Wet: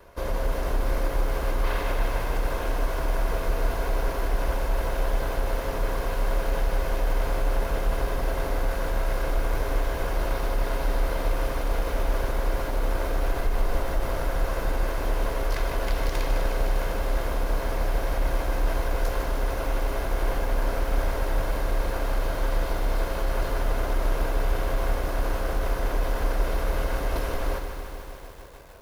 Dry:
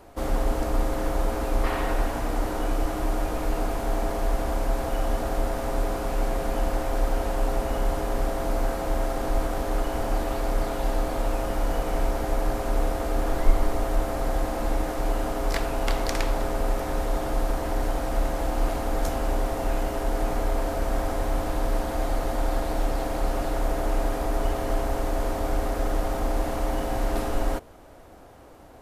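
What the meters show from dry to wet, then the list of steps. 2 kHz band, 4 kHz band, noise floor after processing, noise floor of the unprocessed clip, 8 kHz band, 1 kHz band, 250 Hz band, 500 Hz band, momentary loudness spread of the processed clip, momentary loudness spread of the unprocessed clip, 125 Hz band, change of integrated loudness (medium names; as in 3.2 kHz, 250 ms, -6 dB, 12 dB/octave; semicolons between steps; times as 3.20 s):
+2.5 dB, +0.5 dB, -31 dBFS, -31 dBFS, -2.5 dB, -2.5 dB, -5.5 dB, -2.0 dB, 1 LU, 1 LU, +1.0 dB, -0.5 dB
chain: comb filter that takes the minimum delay 1.9 ms; peaking EQ 7.9 kHz -9 dB 0.37 oct; peak limiter -18 dBFS, peak gain reduction 11.5 dB; bit-crushed delay 152 ms, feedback 80%, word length 8-bit, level -8 dB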